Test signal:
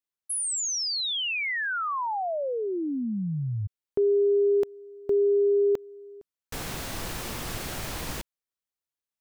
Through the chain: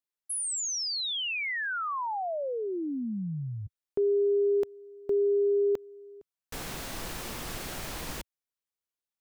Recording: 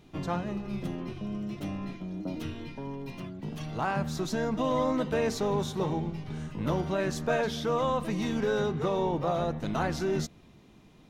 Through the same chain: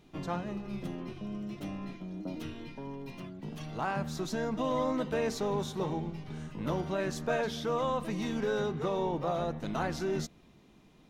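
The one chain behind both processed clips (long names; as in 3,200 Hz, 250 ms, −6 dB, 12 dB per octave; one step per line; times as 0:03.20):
parametric band 97 Hz −5 dB 0.85 octaves
level −3 dB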